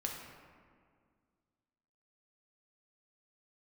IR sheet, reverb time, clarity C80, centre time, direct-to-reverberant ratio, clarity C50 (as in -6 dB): 2.0 s, 4.5 dB, 67 ms, -0.5 dB, 2.5 dB